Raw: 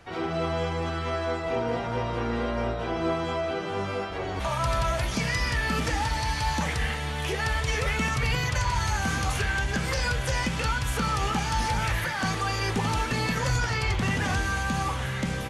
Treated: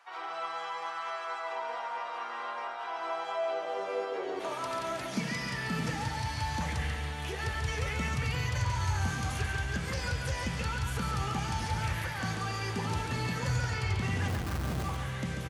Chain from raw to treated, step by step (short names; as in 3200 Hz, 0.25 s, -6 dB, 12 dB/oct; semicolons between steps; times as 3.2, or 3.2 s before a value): 14.28–14.84 Schmitt trigger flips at -26.5 dBFS; high-pass sweep 970 Hz -> 85 Hz, 2.91–6.51; on a send: feedback echo 0.14 s, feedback 37%, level -6 dB; on the sum: gain -8.5 dB